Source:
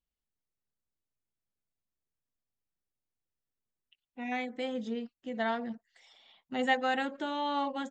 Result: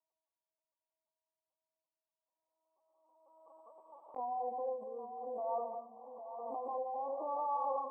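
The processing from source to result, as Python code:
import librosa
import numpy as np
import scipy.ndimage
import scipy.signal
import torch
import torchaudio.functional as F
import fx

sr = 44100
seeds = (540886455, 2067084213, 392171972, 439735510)

p1 = fx.self_delay(x, sr, depth_ms=0.29)
p2 = fx.over_compress(p1, sr, threshold_db=-40.0, ratio=-1.0)
p3 = fx.brickwall_lowpass(p2, sr, high_hz=1200.0)
p4 = fx.lpc_vocoder(p3, sr, seeds[0], excitation='pitch_kept', order=16)
p5 = scipy.signal.sosfilt(scipy.signal.butter(4, 570.0, 'highpass', fs=sr, output='sos'), p4)
p6 = p5 + fx.echo_feedback(p5, sr, ms=806, feedback_pct=25, wet_db=-10.0, dry=0)
p7 = fx.rev_gated(p6, sr, seeds[1], gate_ms=250, shape='rising', drr_db=7.5)
p8 = fx.pre_swell(p7, sr, db_per_s=30.0)
y = p8 * librosa.db_to_amplitude(7.0)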